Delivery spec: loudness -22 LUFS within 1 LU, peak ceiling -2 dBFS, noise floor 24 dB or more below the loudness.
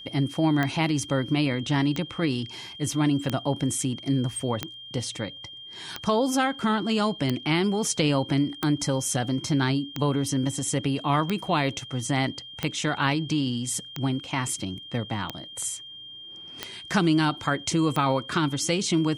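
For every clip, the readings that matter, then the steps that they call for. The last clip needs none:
clicks 14; steady tone 3200 Hz; tone level -40 dBFS; loudness -26.0 LUFS; peak -8.5 dBFS; loudness target -22.0 LUFS
-> de-click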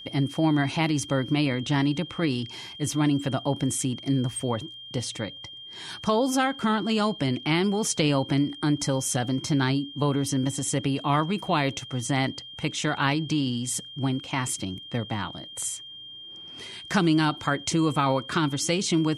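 clicks 0; steady tone 3200 Hz; tone level -40 dBFS
-> notch 3200 Hz, Q 30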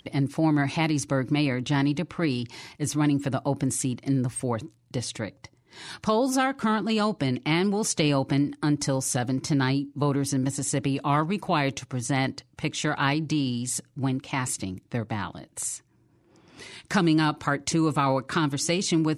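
steady tone none; loudness -26.5 LUFS; peak -9.0 dBFS; loudness target -22.0 LUFS
-> gain +4.5 dB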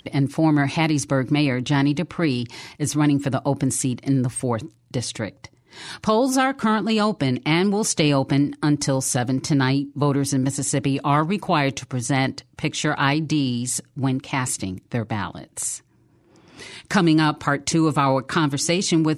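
loudness -22.0 LUFS; peak -4.5 dBFS; noise floor -59 dBFS

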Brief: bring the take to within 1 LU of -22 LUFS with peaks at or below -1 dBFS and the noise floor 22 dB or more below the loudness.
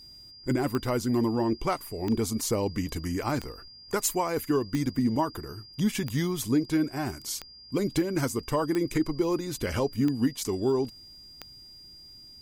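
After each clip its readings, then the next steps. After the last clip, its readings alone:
clicks 9; steady tone 4800 Hz; tone level -47 dBFS; loudness -28.5 LUFS; peak -15.0 dBFS; loudness target -22.0 LUFS
-> de-click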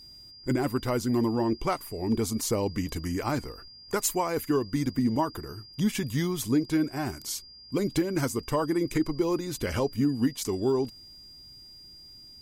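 clicks 0; steady tone 4800 Hz; tone level -47 dBFS
-> notch 4800 Hz, Q 30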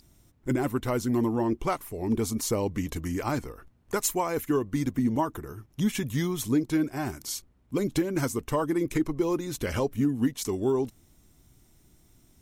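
steady tone none; loudness -28.5 LUFS; peak -15.0 dBFS; loudness target -22.0 LUFS
-> gain +6.5 dB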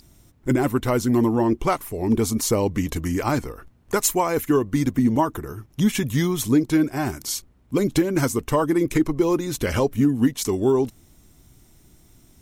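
loudness -22.0 LUFS; peak -8.5 dBFS; noise floor -55 dBFS

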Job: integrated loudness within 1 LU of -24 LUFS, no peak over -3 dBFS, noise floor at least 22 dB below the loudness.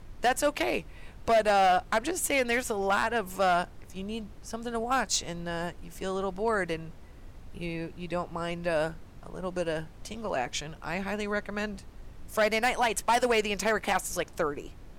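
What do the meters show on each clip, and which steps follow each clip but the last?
clipped 0.8%; flat tops at -18.5 dBFS; noise floor -48 dBFS; noise floor target -52 dBFS; loudness -29.5 LUFS; peak -18.5 dBFS; loudness target -24.0 LUFS
-> clip repair -18.5 dBFS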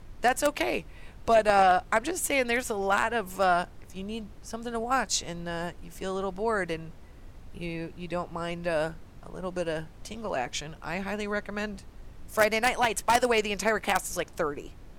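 clipped 0.0%; noise floor -48 dBFS; noise floor target -51 dBFS
-> noise print and reduce 6 dB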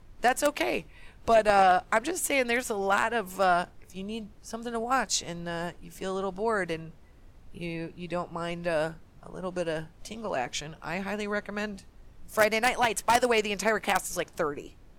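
noise floor -53 dBFS; loudness -28.5 LUFS; peak -9.5 dBFS; loudness target -24.0 LUFS
-> gain +4.5 dB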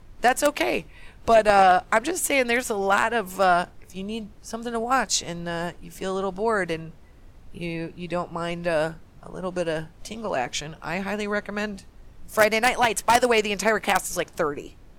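loudness -24.0 LUFS; peak -5.0 dBFS; noise floor -49 dBFS

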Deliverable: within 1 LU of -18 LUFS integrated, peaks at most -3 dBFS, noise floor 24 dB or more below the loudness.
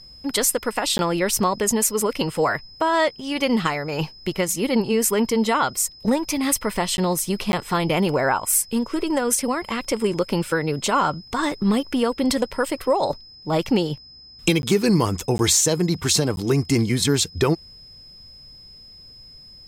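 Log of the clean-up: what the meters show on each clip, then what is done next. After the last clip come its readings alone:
dropouts 6; longest dropout 11 ms; steady tone 5100 Hz; tone level -43 dBFS; loudness -21.5 LUFS; peak -4.5 dBFS; loudness target -18.0 LUFS
-> interpolate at 0.98/6.97/7.52/14.62/15.38/16.36, 11 ms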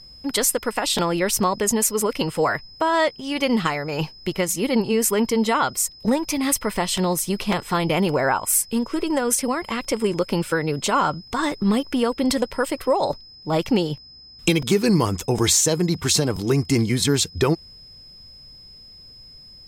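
dropouts 0; steady tone 5100 Hz; tone level -43 dBFS
-> notch 5100 Hz, Q 30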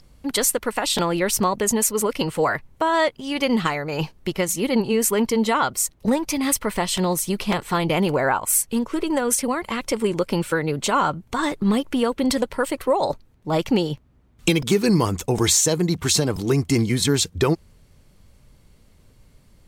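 steady tone none; loudness -21.5 LUFS; peak -4.5 dBFS; loudness target -18.0 LUFS
-> gain +3.5 dB; limiter -3 dBFS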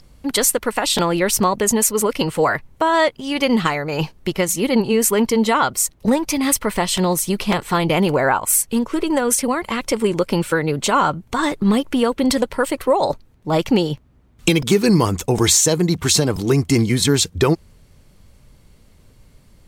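loudness -18.0 LUFS; peak -3.0 dBFS; noise floor -51 dBFS

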